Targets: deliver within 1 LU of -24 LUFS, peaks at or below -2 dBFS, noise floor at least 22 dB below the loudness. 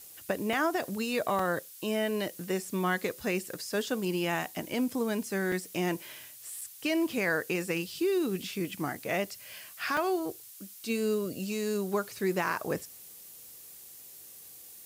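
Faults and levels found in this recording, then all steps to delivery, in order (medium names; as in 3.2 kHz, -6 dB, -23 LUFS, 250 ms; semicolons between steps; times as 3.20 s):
dropouts 6; longest dropout 3.3 ms; noise floor -50 dBFS; noise floor target -54 dBFS; loudness -31.5 LUFS; peak level -17.0 dBFS; loudness target -24.0 LUFS
-> interpolate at 0.53/1.39/5.52/6.61/8.95/9.97 s, 3.3 ms; noise print and reduce 6 dB; trim +7.5 dB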